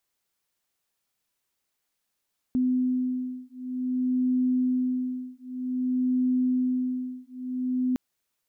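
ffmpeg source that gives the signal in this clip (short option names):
-f lavfi -i "aevalsrc='0.0473*(sin(2*PI*253*t)+sin(2*PI*253.53*t))':d=5.41:s=44100"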